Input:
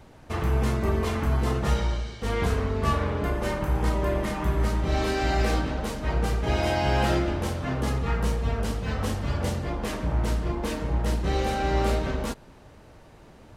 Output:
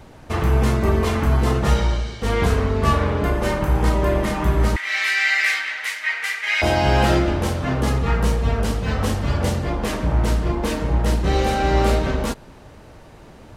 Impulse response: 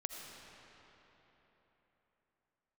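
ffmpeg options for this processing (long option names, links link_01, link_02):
-filter_complex "[0:a]asettb=1/sr,asplit=3[link_01][link_02][link_03];[link_01]atrim=end=4.764[link_04];[link_02]atrim=start=4.76:end=6.62,asetpts=PTS-STARTPTS,afade=type=in:duration=0.004:curve=qsin,afade=type=out:start_time=1.856:duration=0.004:curve=qsin,highpass=frequency=2000:width_type=q:width=6.1[link_05];[link_03]atrim=start=6.616[link_06];[link_04][link_05]acrossfade=duration=0.004:curve1=hsin:curve2=qsin[link_07];[link_07][link_06]acrossfade=duration=0.004:curve1=qsin:curve2=hsin,volume=6.5dB"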